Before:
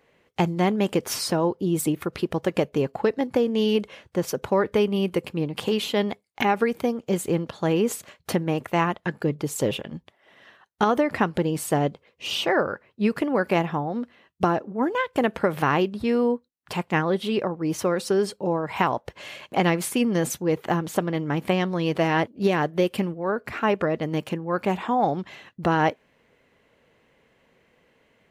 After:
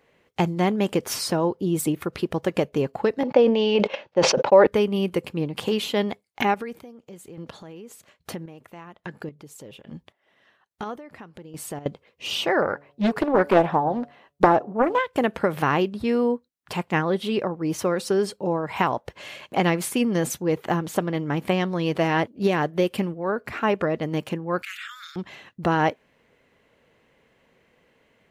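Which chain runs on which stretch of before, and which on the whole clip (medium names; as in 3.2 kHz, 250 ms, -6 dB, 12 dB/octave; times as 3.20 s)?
3.23–4.67 s: gate -39 dBFS, range -37 dB + cabinet simulation 220–5300 Hz, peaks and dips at 570 Hz +10 dB, 860 Hz +8 dB, 2.6 kHz +5 dB + decay stretcher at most 46 dB/s
6.54–11.86 s: compression 2.5:1, threshold -34 dBFS + square tremolo 1.2 Hz, depth 65%, duty 30%
12.62–14.99 s: peaking EQ 820 Hz +8.5 dB 1.1 oct + de-hum 142.9 Hz, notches 5 + loudspeaker Doppler distortion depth 0.65 ms
24.62–25.16 s: steep high-pass 1.3 kHz 96 dB/octave + treble shelf 4.9 kHz +4 dB + level flattener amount 50%
whole clip: none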